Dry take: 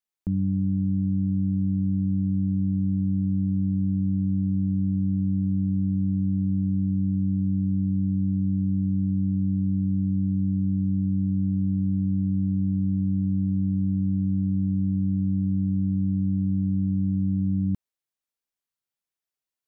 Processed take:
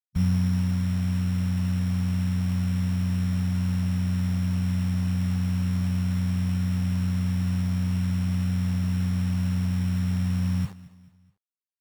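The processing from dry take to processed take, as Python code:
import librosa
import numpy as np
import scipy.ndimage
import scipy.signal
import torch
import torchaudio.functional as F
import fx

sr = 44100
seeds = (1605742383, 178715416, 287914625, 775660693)

y = fx.spec_expand(x, sr, power=2.7)
y = fx.hum_notches(y, sr, base_hz=50, count=9)
y = fx.rider(y, sr, range_db=10, speed_s=2.0)
y = fx.stretch_grains(y, sr, factor=0.6, grain_ms=29.0)
y = fx.quant_dither(y, sr, seeds[0], bits=8, dither='none')
y = fx.formant_shift(y, sr, semitones=-3)
y = fx.echo_feedback(y, sr, ms=216, feedback_pct=42, wet_db=-19)
y = np.repeat(y[::8], 8)[:len(y)]
y = y * 10.0 ** (3.5 / 20.0)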